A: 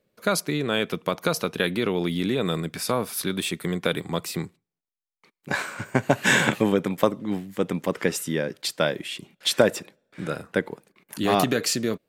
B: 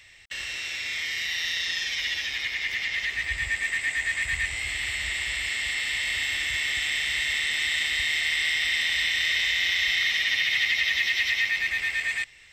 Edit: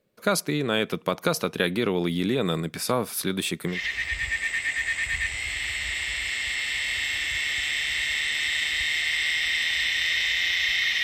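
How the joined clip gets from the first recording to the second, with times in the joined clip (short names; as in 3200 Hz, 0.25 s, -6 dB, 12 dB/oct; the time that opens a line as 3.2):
A
3.74 switch to B from 2.93 s, crossfade 0.16 s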